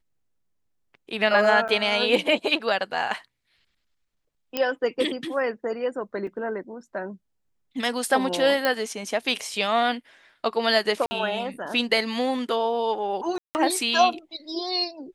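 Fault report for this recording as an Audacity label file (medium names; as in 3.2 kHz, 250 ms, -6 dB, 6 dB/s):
1.680000	1.690000	dropout 7.2 ms
4.570000	4.570000	pop -10 dBFS
6.270000	6.270000	dropout 4.2 ms
8.650000	8.650000	pop -9 dBFS
11.060000	11.110000	dropout 50 ms
13.380000	13.550000	dropout 169 ms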